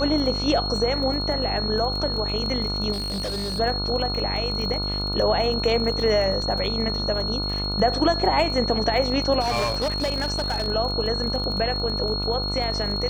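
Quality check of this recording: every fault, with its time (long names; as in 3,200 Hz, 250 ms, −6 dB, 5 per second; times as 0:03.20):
mains buzz 50 Hz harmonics 29 −29 dBFS
surface crackle 31 per second −30 dBFS
whistle 4,300 Hz −27 dBFS
0:02.92–0:03.60: clipping −25 dBFS
0:06.42: drop-out 2.9 ms
0:09.40–0:10.68: clipping −20 dBFS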